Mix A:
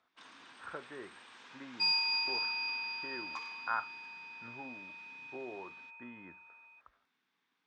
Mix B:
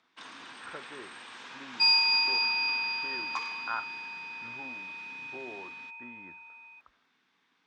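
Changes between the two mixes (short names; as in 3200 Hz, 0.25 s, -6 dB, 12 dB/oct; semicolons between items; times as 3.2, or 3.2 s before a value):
first sound +9.0 dB; second sound +7.5 dB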